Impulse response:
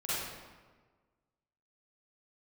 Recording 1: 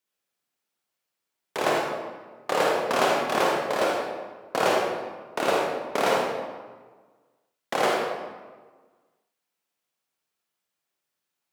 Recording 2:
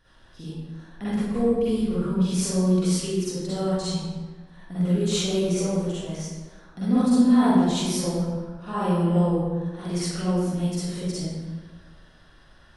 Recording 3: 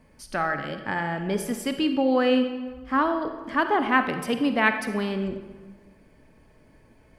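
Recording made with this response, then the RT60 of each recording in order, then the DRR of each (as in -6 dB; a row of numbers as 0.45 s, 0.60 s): 2; 1.4 s, 1.4 s, 1.4 s; -2.5 dB, -12.0 dB, 7.5 dB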